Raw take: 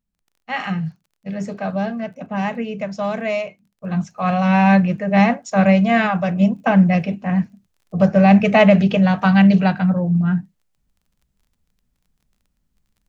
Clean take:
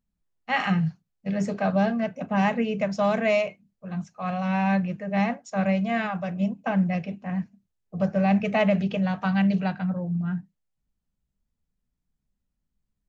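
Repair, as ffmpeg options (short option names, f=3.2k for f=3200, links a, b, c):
-af "adeclick=t=4,asetnsamples=n=441:p=0,asendcmd='3.82 volume volume -10dB',volume=0dB"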